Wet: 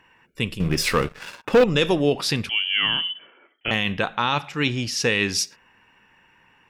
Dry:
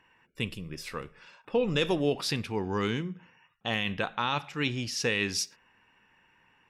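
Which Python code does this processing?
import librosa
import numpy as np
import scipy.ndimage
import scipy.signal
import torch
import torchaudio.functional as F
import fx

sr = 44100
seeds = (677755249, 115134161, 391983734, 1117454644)

y = fx.leveller(x, sr, passes=3, at=(0.6, 1.64))
y = fx.freq_invert(y, sr, carrier_hz=3200, at=(2.49, 3.71))
y = y * 10.0 ** (7.0 / 20.0)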